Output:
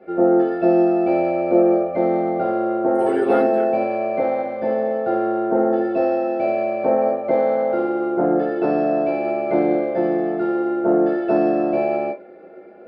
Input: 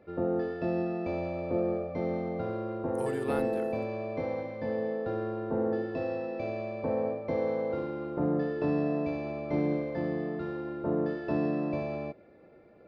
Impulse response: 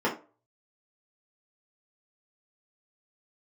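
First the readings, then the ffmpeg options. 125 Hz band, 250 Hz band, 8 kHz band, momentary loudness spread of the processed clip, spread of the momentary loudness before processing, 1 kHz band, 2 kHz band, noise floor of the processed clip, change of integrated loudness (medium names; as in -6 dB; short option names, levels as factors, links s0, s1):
+0.5 dB, +12.0 dB, no reading, 5 LU, 5 LU, +16.5 dB, +9.5 dB, -41 dBFS, +12.5 dB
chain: -filter_complex "[1:a]atrim=start_sample=2205,asetrate=70560,aresample=44100[s0];[0:a][s0]afir=irnorm=-1:irlink=0,volume=1.26"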